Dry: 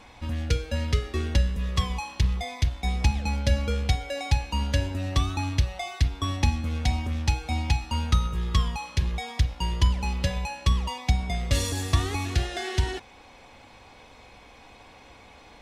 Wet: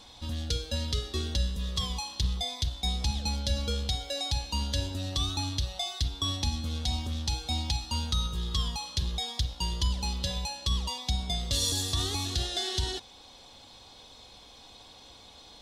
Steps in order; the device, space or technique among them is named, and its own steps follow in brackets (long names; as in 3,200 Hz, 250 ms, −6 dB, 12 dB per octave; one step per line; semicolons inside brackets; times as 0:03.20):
over-bright horn tweeter (high shelf with overshoot 2,900 Hz +7.5 dB, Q 3; brickwall limiter −13.5 dBFS, peak gain reduction 7.5 dB)
level −4.5 dB